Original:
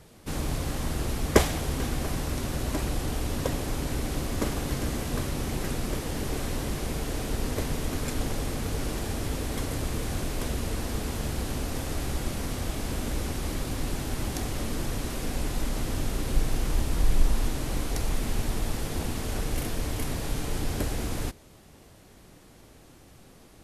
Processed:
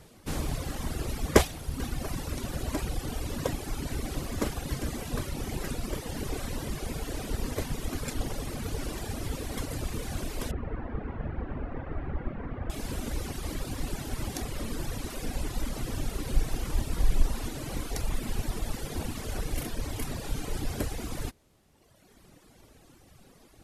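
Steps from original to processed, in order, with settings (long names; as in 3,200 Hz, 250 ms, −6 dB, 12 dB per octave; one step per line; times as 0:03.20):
reverb reduction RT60 1.8 s
0:10.51–0:12.70: low-pass filter 1,900 Hz 24 dB per octave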